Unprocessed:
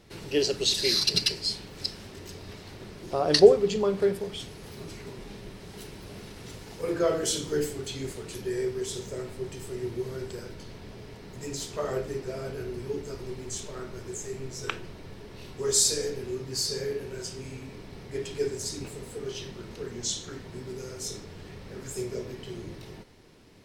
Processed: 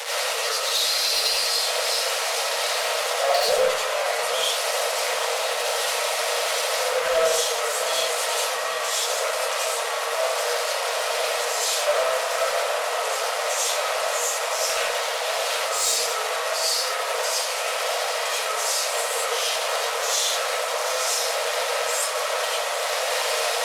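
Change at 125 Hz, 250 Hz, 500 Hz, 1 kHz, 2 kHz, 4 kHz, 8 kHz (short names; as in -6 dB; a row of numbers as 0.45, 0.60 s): under -20 dB, under -20 dB, +4.0 dB, +17.0 dB, +17.0 dB, +8.5 dB, +9.5 dB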